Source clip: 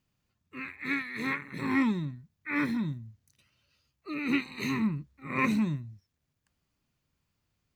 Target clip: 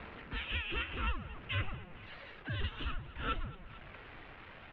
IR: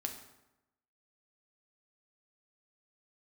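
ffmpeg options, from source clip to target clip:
-af "aeval=exprs='val(0)+0.5*0.0133*sgn(val(0))':c=same,asubboost=boost=5:cutoff=130,asetrate=72324,aresample=44100,aecho=1:1:224|448|672|896:0.126|0.0554|0.0244|0.0107,acompressor=threshold=0.02:ratio=3,highpass=f=430:t=q:w=0.5412,highpass=f=430:t=q:w=1.307,lowpass=f=3100:t=q:w=0.5176,lowpass=f=3100:t=q:w=0.7071,lowpass=f=3100:t=q:w=1.932,afreqshift=-380,aphaser=in_gain=1:out_gain=1:delay=2.6:decay=0.23:speed=0.59:type=sinusoidal,volume=1.33"

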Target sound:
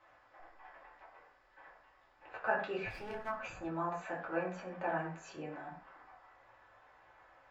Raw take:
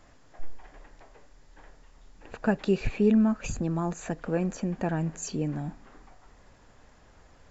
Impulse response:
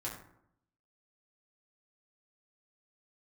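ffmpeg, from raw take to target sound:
-filter_complex "[0:a]acrossover=split=560 3200:gain=0.0708 1 0.0794[s0][s1][s2];[s0][s1][s2]amix=inputs=3:normalize=0,asplit=3[s3][s4][s5];[s3]afade=t=out:st=2.88:d=0.02[s6];[s4]aeval=exprs='max(val(0),0)':c=same,afade=t=in:st=2.88:d=0.02,afade=t=out:st=3.28:d=0.02[s7];[s5]afade=t=in:st=3.28:d=0.02[s8];[s6][s7][s8]amix=inputs=3:normalize=0[s9];[1:a]atrim=start_sample=2205,atrim=end_sample=6615[s10];[s9][s10]afir=irnorm=-1:irlink=0"

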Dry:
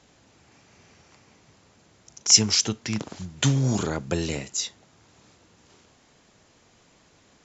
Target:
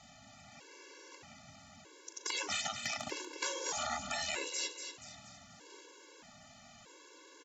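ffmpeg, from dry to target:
-filter_complex "[0:a]afftfilt=real='re*lt(hypot(re,im),0.0891)':imag='im*lt(hypot(re,im),0.0891)':win_size=1024:overlap=0.75,acrossover=split=2600[s0][s1];[s1]acompressor=threshold=0.0224:ratio=4:attack=1:release=60[s2];[s0][s2]amix=inputs=2:normalize=0,lowshelf=f=220:g=-8.5,asplit=2[s3][s4];[s4]acompressor=threshold=0.00891:ratio=6,volume=0.841[s5];[s3][s5]amix=inputs=2:normalize=0,asoftclip=type=hard:threshold=0.126,aecho=1:1:238|476|714|952|1190:0.398|0.171|0.0736|0.0317|0.0136,afftfilt=real='re*gt(sin(2*PI*0.8*pts/sr)*(1-2*mod(floor(b*sr/1024/290),2)),0)':imag='im*gt(sin(2*PI*0.8*pts/sr)*(1-2*mod(floor(b*sr/1024/290),2)),0)':win_size=1024:overlap=0.75"

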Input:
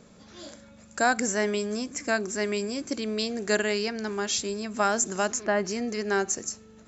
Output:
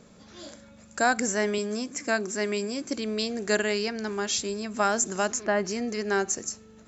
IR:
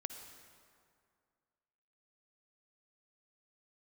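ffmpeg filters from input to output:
-filter_complex "[0:a]asettb=1/sr,asplit=3[s0][s1][s2];[s0]atrim=end=1.584[s3];[s1]atrim=start=1.58:end=2.9,asetpts=PTS-STARTPTS,afade=t=in:d=0.004:c=qsin,afade=t=out:st=1.316:d=0.004:c=qsin,highpass=110[s4];[s2]atrim=start=2.896[s5];[s3][s4]acrossfade=d=0.004:c1=hsin:c2=qsin[s6];[s6][s5]acrossfade=d=0.004:c1=qsin:c2=hsin"

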